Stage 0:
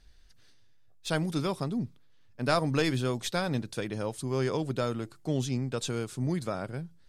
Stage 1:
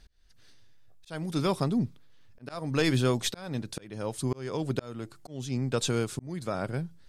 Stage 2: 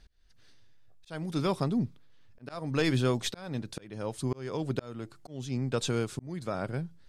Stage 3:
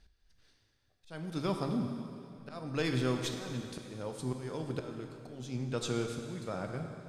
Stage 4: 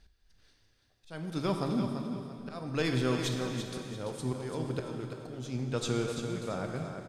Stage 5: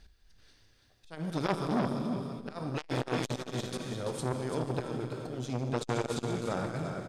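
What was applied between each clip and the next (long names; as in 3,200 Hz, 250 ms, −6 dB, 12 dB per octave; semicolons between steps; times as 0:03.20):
volume swells 475 ms; level +4.5 dB
high-shelf EQ 7,600 Hz −6.5 dB; level −1.5 dB
dense smooth reverb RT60 2.6 s, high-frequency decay 0.9×, DRR 3.5 dB; level −5.5 dB
repeating echo 338 ms, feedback 31%, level −8 dB; level +2 dB
saturating transformer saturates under 1,100 Hz; level +5 dB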